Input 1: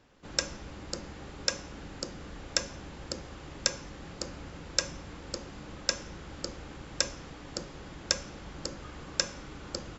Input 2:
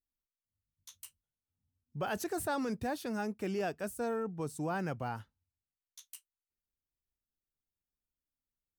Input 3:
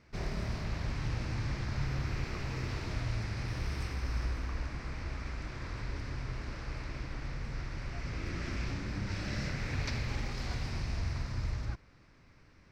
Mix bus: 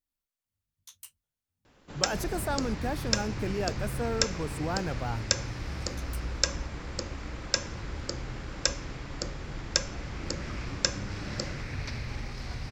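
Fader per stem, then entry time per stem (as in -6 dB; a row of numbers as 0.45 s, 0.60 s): +1.5 dB, +2.5 dB, -1.0 dB; 1.65 s, 0.00 s, 2.00 s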